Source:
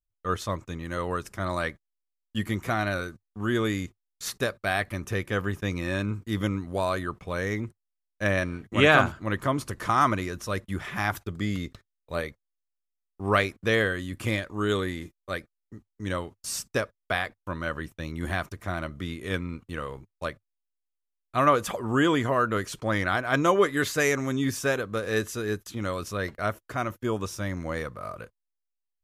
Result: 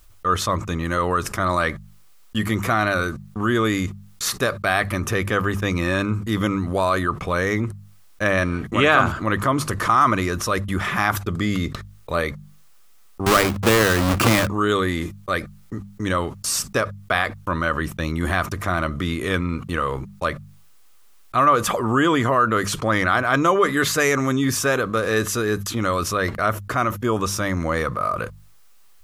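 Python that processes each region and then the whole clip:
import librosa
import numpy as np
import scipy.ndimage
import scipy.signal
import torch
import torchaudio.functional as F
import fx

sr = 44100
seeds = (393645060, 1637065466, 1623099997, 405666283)

y = fx.chain(x, sr, fx.halfwave_hold(),
    fx.hum_notches(base_hz=50, count=3),
    fx.band_squash(depth_pct=100), at=(13.26, 14.47))
y = fx.peak_eq(y, sr, hz=1200.0, db=6.5, octaves=0.4)
y = fx.hum_notches(y, sr, base_hz=50, count=4)
y = fx.env_flatten(y, sr, amount_pct=50)
y = y * 10.0 ** (-1.0 / 20.0)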